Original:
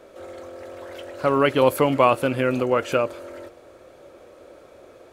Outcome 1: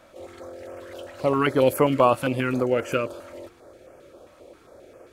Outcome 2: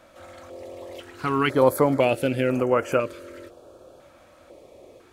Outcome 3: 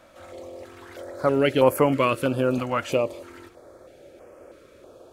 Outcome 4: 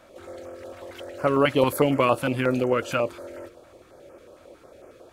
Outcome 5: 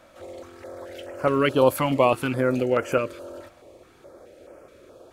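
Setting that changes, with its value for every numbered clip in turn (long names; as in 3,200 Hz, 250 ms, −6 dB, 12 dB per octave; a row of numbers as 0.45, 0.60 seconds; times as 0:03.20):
notch on a step sequencer, speed: 7.5, 2, 3.1, 11, 4.7 Hertz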